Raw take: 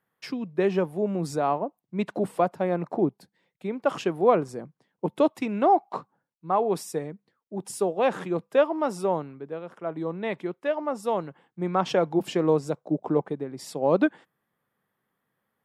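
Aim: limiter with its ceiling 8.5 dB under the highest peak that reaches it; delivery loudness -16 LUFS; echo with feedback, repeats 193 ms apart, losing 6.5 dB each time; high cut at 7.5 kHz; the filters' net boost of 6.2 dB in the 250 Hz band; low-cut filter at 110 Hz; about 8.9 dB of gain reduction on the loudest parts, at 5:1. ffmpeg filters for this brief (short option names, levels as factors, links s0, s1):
-af "highpass=110,lowpass=7500,equalizer=f=250:t=o:g=9,acompressor=threshold=0.1:ratio=5,alimiter=limit=0.112:level=0:latency=1,aecho=1:1:193|386|579|772|965|1158:0.473|0.222|0.105|0.0491|0.0231|0.0109,volume=4.47"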